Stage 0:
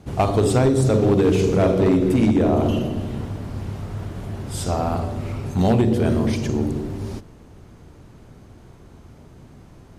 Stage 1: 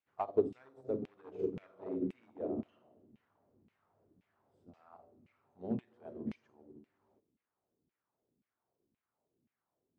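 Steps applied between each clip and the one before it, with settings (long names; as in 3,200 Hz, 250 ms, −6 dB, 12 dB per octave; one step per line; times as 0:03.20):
auto-filter band-pass saw down 1.9 Hz 210–2,600 Hz
expander for the loud parts 2.5 to 1, over −33 dBFS
level −5.5 dB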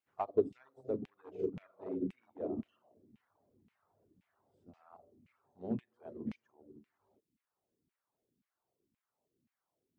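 reverb reduction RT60 0.56 s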